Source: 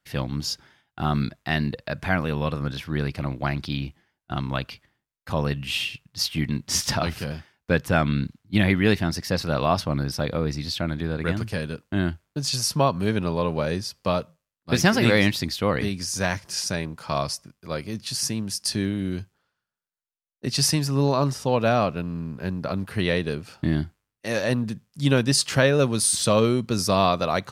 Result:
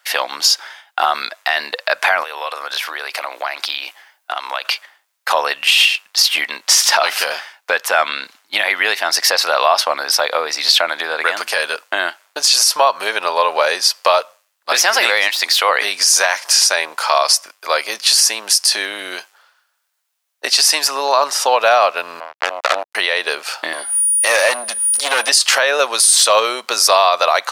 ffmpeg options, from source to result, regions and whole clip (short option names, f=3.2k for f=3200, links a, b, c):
-filter_complex "[0:a]asettb=1/sr,asplit=3[a][b][c];[a]atrim=end=2.234[d];[b]atrim=start=2.23:end=4.65,asetpts=PTS-STARTPTS,afade=t=in:d=0.004:c=qsin,afade=t=out:st=2.416:d=0.004:c=qsin,highpass=330,highshelf=f=12k:g=7,acompressor=threshold=-39dB:ratio=5:attack=3.2:release=140:knee=1:detection=peak[e];[c]atrim=start=4.646[f];[d][e]acrossfade=d=0.004:c1=hsin:c2=qsin[g];[g][f]acrossfade=d=0.004:c1=qsin:c2=hsin,asettb=1/sr,asplit=3[h][i][j];[h]atrim=end=15.284[k];[i]atrim=start=15.28:end=15.69,asetpts=PTS-STARTPTS,afade=t=in:d=0.004:c=qsin,afade=t=out:st=0.406:d=0.004:c=qsin,deesser=0.7,highpass=f=560:p=1[l];[j]atrim=start=15.686[m];[k][l]acrossfade=d=0.004:c1=hsin:c2=qsin[n];[n][m]acrossfade=d=0.004:c1=qsin:c2=hsin,asettb=1/sr,asplit=3[o][p][q];[o]atrim=end=22.204[r];[p]atrim=start=22.2:end=22.95,asetpts=PTS-STARTPTS,afade=t=in:d=0.004:c=qsin,afade=t=out:st=0.746:d=0.004:c=qsin,asuperstop=centerf=900:order=4:qfactor=2.4,bass=f=250:g=-2,treble=f=4k:g=-9,acrusher=bits=3:mix=0:aa=0.5[s];[q]atrim=start=22.946[t];[r][s]acrossfade=d=0.004:c1=hsin:c2=qsin[u];[u][t]acrossfade=d=0.004:c1=qsin:c2=hsin,asettb=1/sr,asplit=3[v][w][x];[v]atrim=end=23.734[y];[w]atrim=start=23.73:end=25.29,asetpts=PTS-STARTPTS,afade=t=in:d=0.004:c=qsin,afade=t=out:st=1.556:d=0.004:c=qsin,aeval=exprs='val(0)+0.00631*sin(2*PI*9600*n/s)':c=same,acompressor=mode=upward:threshold=-26dB:ratio=2.5:attack=3.2:release=140:knee=2.83:detection=peak,aeval=exprs='(tanh(15.8*val(0)+0.25)-tanh(0.25))/15.8':c=same[z];[x]atrim=start=25.286[aa];[y][z]acrossfade=d=0.004:c1=hsin:c2=qsin[ab];[ab][aa]acrossfade=d=0.004:c1=qsin:c2=hsin,acompressor=threshold=-28dB:ratio=2.5,highpass=f=650:w=0.5412,highpass=f=650:w=1.3066,alimiter=level_in=23dB:limit=-1dB:release=50:level=0:latency=1,volume=-1dB"